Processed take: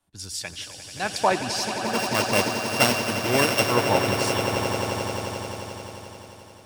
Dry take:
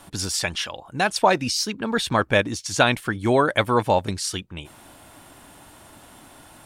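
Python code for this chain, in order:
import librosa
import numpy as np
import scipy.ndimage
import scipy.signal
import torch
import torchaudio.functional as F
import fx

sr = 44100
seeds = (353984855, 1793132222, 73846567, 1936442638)

p1 = fx.sample_sort(x, sr, block=16, at=(1.85, 3.63))
p2 = p1 + fx.echo_swell(p1, sr, ms=88, loudest=8, wet_db=-9, dry=0)
p3 = fx.band_widen(p2, sr, depth_pct=70)
y = p3 * librosa.db_to_amplitude(-5.5)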